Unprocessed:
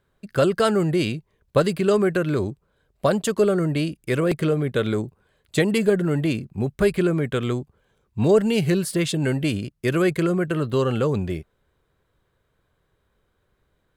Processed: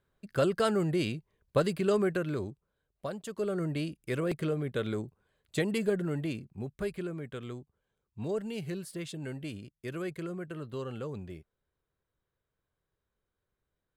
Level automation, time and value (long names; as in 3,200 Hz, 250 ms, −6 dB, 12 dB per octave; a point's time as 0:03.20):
0:02.05 −8 dB
0:03.21 −18.5 dB
0:03.62 −10 dB
0:06.01 −10 dB
0:07.09 −16.5 dB